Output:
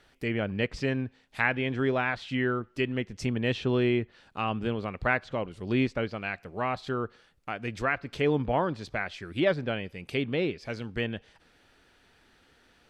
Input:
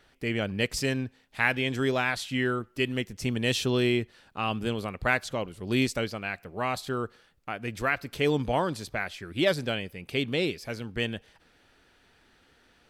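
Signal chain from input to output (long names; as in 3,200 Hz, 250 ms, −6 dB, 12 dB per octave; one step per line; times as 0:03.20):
treble cut that deepens with the level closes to 2,300 Hz, closed at −25.5 dBFS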